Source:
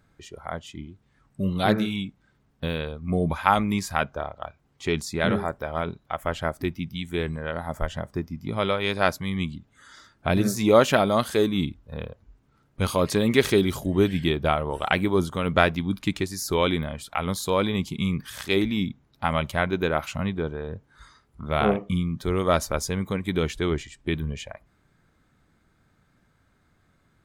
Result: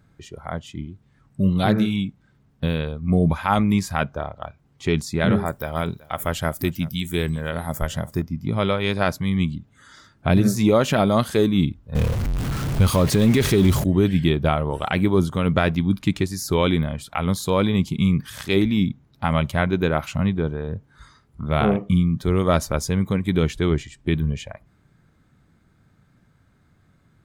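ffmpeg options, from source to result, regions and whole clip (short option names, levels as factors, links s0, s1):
-filter_complex "[0:a]asettb=1/sr,asplit=3[s0][s1][s2];[s0]atrim=end=5.464[s3];[s1]atrim=start=5.46:end=8.22,asetpts=PTS-STARTPTS,afade=t=in:d=0.004:c=qsin,afade=t=out:st=2.756:d=0.004:c=qsin,aemphasis=mode=production:type=75fm,aecho=1:1:379:0.0891,atrim=end_sample=121716[s4];[s2]atrim=start=8.216[s5];[s3][s4]acrossfade=d=0.004:c1=hsin:c2=qsin[s6];[s6][s5]acrossfade=d=0.004:c1=qsin:c2=hsin,asettb=1/sr,asplit=3[s7][s8][s9];[s7]atrim=end=11.954[s10];[s8]atrim=start=11.95:end=13.84,asetpts=PTS-STARTPTS,afade=t=in:d=0.004:c=qsin,afade=t=out:st=1.886:d=0.004:c=qsin,aeval=exprs='val(0)+0.5*0.0473*sgn(val(0))':c=same,lowshelf=f=62:g=11.5[s11];[s9]atrim=start=13.836[s12];[s10][s11]acrossfade=d=0.004:c1=hsin:c2=qsin[s13];[s13][s12]acrossfade=d=0.004:c1=qsin:c2=hsin,equalizer=f=130:w=0.65:g=7.5,alimiter=level_in=2.24:limit=0.891:release=50:level=0:latency=1,volume=0.501"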